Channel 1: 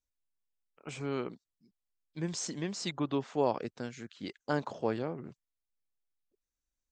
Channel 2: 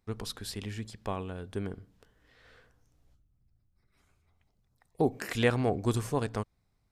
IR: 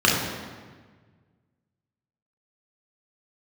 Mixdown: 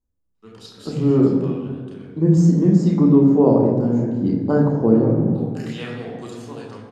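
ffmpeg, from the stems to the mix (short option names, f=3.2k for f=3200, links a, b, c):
-filter_complex "[0:a]equalizer=f=3.1k:w=0.97:g=-14,volume=2.5dB,asplit=2[a][b];[b]volume=-13dB[c];[1:a]bandpass=f=5k:t=q:w=0.64:csg=0,adelay=350,volume=-6.5dB,asplit=2[d][e];[e]volume=-7.5dB[f];[2:a]atrim=start_sample=2205[g];[c][f]amix=inputs=2:normalize=0[h];[h][g]afir=irnorm=-1:irlink=0[i];[a][d][i]amix=inputs=3:normalize=0,tiltshelf=f=670:g=9,dynaudnorm=f=120:g=5:m=3.5dB"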